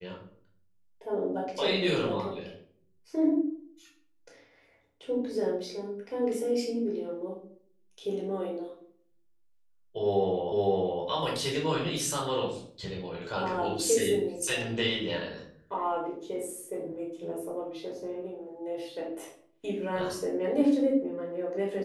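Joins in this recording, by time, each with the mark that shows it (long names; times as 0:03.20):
0:10.52: the same again, the last 0.51 s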